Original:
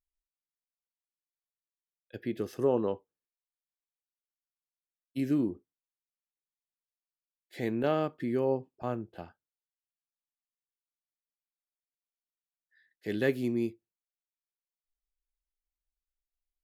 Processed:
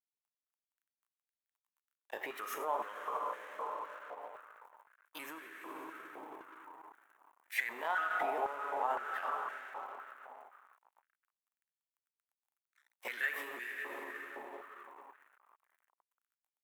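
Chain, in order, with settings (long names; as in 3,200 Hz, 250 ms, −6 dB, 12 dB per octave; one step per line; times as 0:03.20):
pitch shifter swept by a sawtooth +3 semitones, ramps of 399 ms
dense smooth reverb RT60 3.6 s, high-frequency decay 0.6×, DRR 4 dB
downward compressor 5 to 1, threshold −37 dBFS, peak gain reduction 14 dB
mains hum 60 Hz, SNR 26 dB
brickwall limiter −35 dBFS, peak gain reduction 8.5 dB
automatic gain control gain up to 9 dB
surface crackle 130 per second −62 dBFS
high-shelf EQ 6,000 Hz +7 dB
dead-zone distortion −52.5 dBFS
parametric band 4,700 Hz −13 dB 0.71 octaves
high-pass on a step sequencer 3.9 Hz 820–1,700 Hz
level +2 dB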